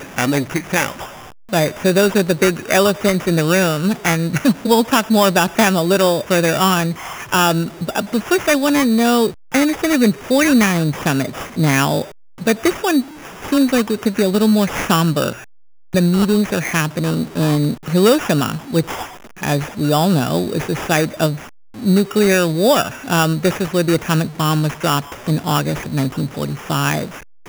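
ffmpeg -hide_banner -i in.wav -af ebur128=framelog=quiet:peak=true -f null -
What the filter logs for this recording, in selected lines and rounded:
Integrated loudness:
  I:         -16.7 LUFS
  Threshold: -27.0 LUFS
Loudness range:
  LRA:         3.1 LU
  Threshold: -36.8 LUFS
  LRA low:   -18.3 LUFS
  LRA high:  -15.2 LUFS
True peak:
  Peak:       -1.3 dBFS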